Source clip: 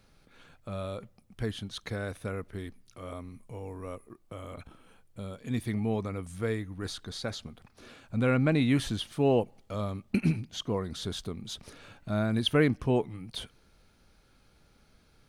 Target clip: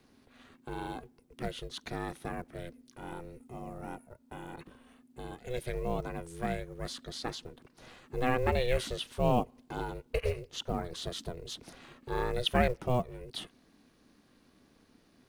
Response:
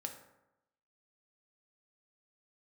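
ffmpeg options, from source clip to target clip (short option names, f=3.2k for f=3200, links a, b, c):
-filter_complex "[0:a]acrossover=split=160|3000[a][b][c];[a]acompressor=threshold=-44dB:ratio=3[d];[d][b][c]amix=inputs=3:normalize=0,aeval=exprs='val(0)*sin(2*PI*250*n/s)':c=same,acrusher=bits=8:mode=log:mix=0:aa=0.000001,volume=1dB"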